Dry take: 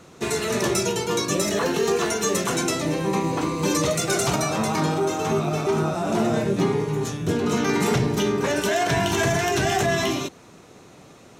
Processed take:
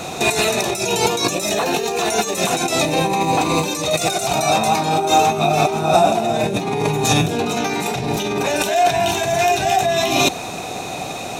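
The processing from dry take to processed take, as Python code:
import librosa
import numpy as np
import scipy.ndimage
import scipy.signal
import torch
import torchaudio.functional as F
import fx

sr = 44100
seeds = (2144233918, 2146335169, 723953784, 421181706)

y = fx.high_shelf(x, sr, hz=5200.0, db=9.5)
y = fx.over_compress(y, sr, threshold_db=-30.0, ratio=-1.0)
y = fx.small_body(y, sr, hz=(740.0, 2500.0, 3700.0), ring_ms=20, db=14)
y = y * 10.0 ** (7.5 / 20.0)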